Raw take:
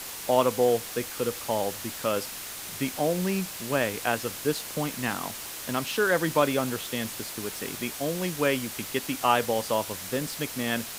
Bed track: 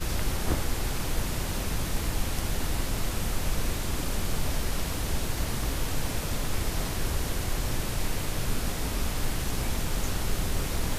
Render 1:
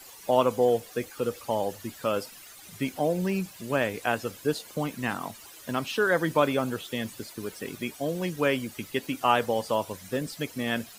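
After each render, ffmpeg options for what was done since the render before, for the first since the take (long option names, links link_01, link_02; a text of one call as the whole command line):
ffmpeg -i in.wav -af "afftdn=noise_reduction=14:noise_floor=-38" out.wav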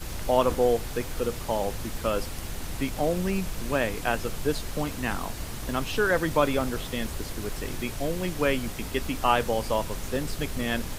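ffmpeg -i in.wav -i bed.wav -filter_complex "[1:a]volume=-6dB[link_01];[0:a][link_01]amix=inputs=2:normalize=0" out.wav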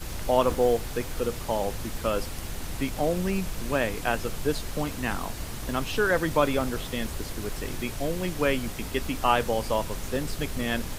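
ffmpeg -i in.wav -filter_complex "[0:a]asettb=1/sr,asplit=3[link_01][link_02][link_03];[link_01]atrim=end=0.454[link_04];[link_02]atrim=start=0.45:end=0.91,asetpts=PTS-STARTPTS,afade=type=in:duration=0.004:curve=qsin,afade=type=out:start_time=0.456:duration=0.004:curve=qsin,acrusher=bits=9:mode=log:mix=0:aa=0.000001[link_05];[link_03]atrim=start=0.906[link_06];[link_04][link_05]acrossfade=duration=0.004:curve1=hsin:curve2=qsin[link_07];[link_07][link_06]acrossfade=duration=0.004:curve1=qsin:curve2=hsin" out.wav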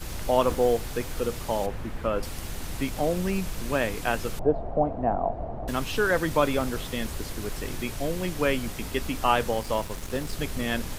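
ffmpeg -i in.wav -filter_complex "[0:a]asettb=1/sr,asplit=3[link_01][link_02][link_03];[link_01]atrim=end=1.664[link_04];[link_02]atrim=start=1.66:end=2.23,asetpts=PTS-STARTPTS,afade=type=in:duration=0.004:curve=qsin,afade=type=out:start_time=0.566:duration=0.004:curve=qsin,acrossover=split=2700[link_05][link_06];[link_06]acompressor=threshold=-56dB:ratio=4:attack=1:release=60[link_07];[link_05][link_07]amix=inputs=2:normalize=0[link_08];[link_03]atrim=start=2.226[link_09];[link_04][link_08]acrossfade=duration=0.004:curve1=hsin:curve2=qsin[link_10];[link_10][link_09]acrossfade=duration=0.004:curve1=qsin:curve2=hsin,asettb=1/sr,asplit=3[link_11][link_12][link_13];[link_11]atrim=end=4.394[link_14];[link_12]atrim=start=4.39:end=5.68,asetpts=PTS-STARTPTS,afade=type=in:duration=0.004:curve=qsin,afade=type=out:start_time=1.286:duration=0.004:curve=qsin,lowpass=frequency=690:width_type=q:width=6.2[link_15];[link_13]atrim=start=5.676[link_16];[link_14][link_15]acrossfade=duration=0.004:curve1=hsin:curve2=qsin[link_17];[link_17][link_16]acrossfade=duration=0.004:curve1=qsin:curve2=hsin,asettb=1/sr,asplit=3[link_18][link_19][link_20];[link_18]atrim=end=9.514[link_21];[link_19]atrim=start=9.51:end=10.33,asetpts=PTS-STARTPTS,afade=type=in:duration=0.004:curve=qsin,afade=type=out:start_time=0.816:duration=0.004:curve=qsin,aeval=exprs='sgn(val(0))*max(abs(val(0))-0.00841,0)':channel_layout=same[link_22];[link_20]atrim=start=10.326[link_23];[link_21][link_22]acrossfade=duration=0.004:curve1=hsin:curve2=qsin[link_24];[link_24][link_23]acrossfade=duration=0.004:curve1=qsin:curve2=hsin" out.wav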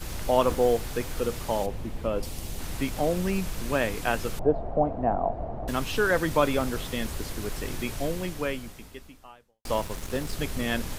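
ffmpeg -i in.wav -filter_complex "[0:a]asettb=1/sr,asplit=3[link_01][link_02][link_03];[link_01]atrim=end=1.634[link_04];[link_02]atrim=start=1.63:end=2.59,asetpts=PTS-STARTPTS,afade=type=in:duration=0.004:curve=qsin,afade=type=out:start_time=0.956:duration=0.004:curve=qsin,equalizer=frequency=1500:width=1.2:gain=-8[link_05];[link_03]atrim=start=2.586[link_06];[link_04][link_05]acrossfade=duration=0.004:curve1=hsin:curve2=qsin[link_07];[link_07][link_06]acrossfade=duration=0.004:curve1=qsin:curve2=hsin,asplit=2[link_08][link_09];[link_08]atrim=end=9.65,asetpts=PTS-STARTPTS,afade=type=out:start_time=8.04:duration=1.61:curve=qua[link_10];[link_09]atrim=start=9.65,asetpts=PTS-STARTPTS,afade=type=in:duration=0.004:curve=hsin[link_11];[link_10][link_11]concat=n=2:v=0:a=1" out.wav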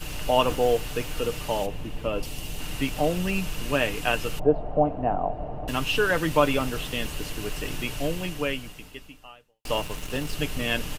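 ffmpeg -i in.wav -af "equalizer=frequency=2800:width_type=o:width=0.22:gain=13,aecho=1:1:6.7:0.39" out.wav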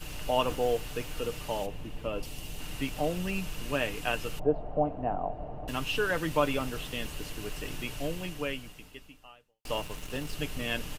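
ffmpeg -i in.wav -af "volume=-6dB" out.wav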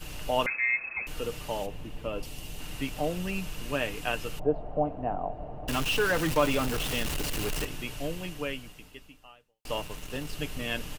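ffmpeg -i in.wav -filter_complex "[0:a]asettb=1/sr,asplit=3[link_01][link_02][link_03];[link_01]atrim=end=0.464[link_04];[link_02]atrim=start=0.46:end=1.07,asetpts=PTS-STARTPTS,afade=type=in:duration=0.004:curve=qsin,afade=type=out:start_time=0.606:duration=0.004:curve=qsin,lowpass=frequency=2200:width_type=q:width=0.5098,lowpass=frequency=2200:width_type=q:width=0.6013,lowpass=frequency=2200:width_type=q:width=0.9,lowpass=frequency=2200:width_type=q:width=2.563,afreqshift=-2600[link_05];[link_03]atrim=start=1.066[link_06];[link_04][link_05]acrossfade=duration=0.004:curve1=hsin:curve2=qsin[link_07];[link_07][link_06]acrossfade=duration=0.004:curve1=qsin:curve2=hsin,asettb=1/sr,asplit=3[link_08][link_09][link_10];[link_08]atrim=end=5.684[link_11];[link_09]atrim=start=5.68:end=7.65,asetpts=PTS-STARTPTS,afade=type=in:duration=0.004:curve=qsin,afade=type=out:start_time=1.966:duration=0.004:curve=qsin,aeval=exprs='val(0)+0.5*0.0376*sgn(val(0))':channel_layout=same[link_12];[link_10]atrim=start=7.646[link_13];[link_11][link_12]acrossfade=duration=0.004:curve1=hsin:curve2=qsin[link_14];[link_14][link_13]acrossfade=duration=0.004:curve1=qsin:curve2=hsin" out.wav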